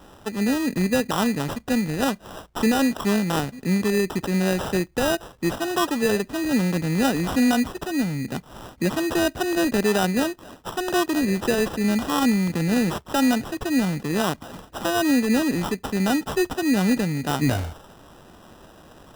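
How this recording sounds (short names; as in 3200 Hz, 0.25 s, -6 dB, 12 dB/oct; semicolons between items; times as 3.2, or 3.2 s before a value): aliases and images of a low sample rate 2200 Hz, jitter 0%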